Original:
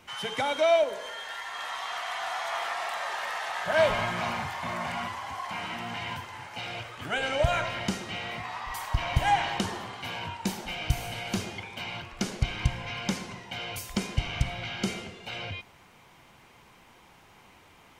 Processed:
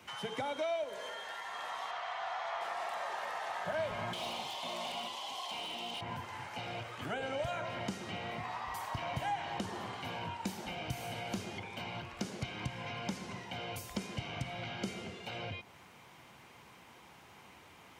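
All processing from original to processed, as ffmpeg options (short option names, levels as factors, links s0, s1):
-filter_complex "[0:a]asettb=1/sr,asplit=3[s0][s1][s2];[s0]atrim=end=1.914[s3];[s1]atrim=start=1.91:end=2.61,asetpts=PTS-STARTPTS,afade=t=in:d=0.004:c=qsin,afade=t=out:st=0.696:d=0.004:c=qsin,lowpass=4900,equalizer=f=260:w=1.7:g=-12[s4];[s2]atrim=start=2.606[s5];[s3][s4]acrossfade=d=0.004:c1=hsin:c2=qsin[s6];[s6][s5]acrossfade=d=0.004:c1=qsin:c2=hsin,asettb=1/sr,asplit=3[s7][s8][s9];[s7]atrim=end=4.134[s10];[s8]atrim=start=4.13:end=6.01,asetpts=PTS-STARTPTS,afade=t=in:d=0.004:c=qsin,afade=t=out:st=1.876:d=0.004:c=qsin,highpass=360,highshelf=f=2300:t=q:w=3:g=12,asoftclip=type=hard:threshold=0.075[s11];[s9]atrim=start=6.006[s12];[s10][s11]acrossfade=d=0.004:c1=hsin:c2=qsin[s13];[s13][s12]acrossfade=d=0.004:c1=qsin:c2=hsin,highpass=75,acrossover=split=110|1000[s14][s15][s16];[s14]acompressor=threshold=0.00282:ratio=4[s17];[s15]acompressor=threshold=0.0158:ratio=4[s18];[s16]acompressor=threshold=0.00631:ratio=4[s19];[s17][s18][s19]amix=inputs=3:normalize=0,volume=0.891"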